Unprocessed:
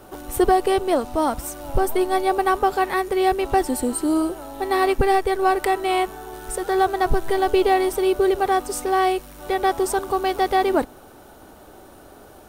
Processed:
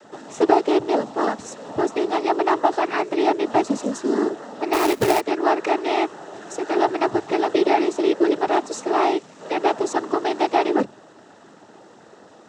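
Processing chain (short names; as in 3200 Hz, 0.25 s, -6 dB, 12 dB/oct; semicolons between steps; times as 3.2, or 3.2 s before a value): noise vocoder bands 12; notches 50/100/150 Hz; 4.73–5.21 companded quantiser 4-bit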